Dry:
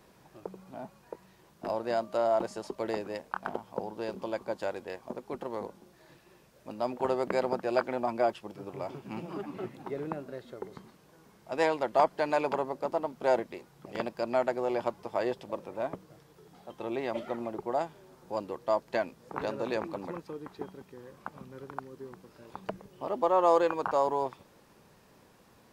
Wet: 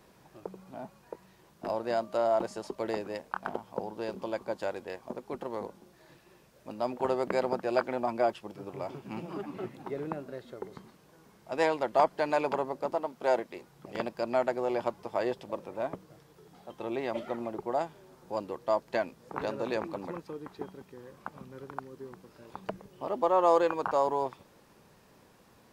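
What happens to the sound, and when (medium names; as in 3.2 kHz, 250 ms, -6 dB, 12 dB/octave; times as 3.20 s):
12.95–13.56 s: bass shelf 170 Hz -10 dB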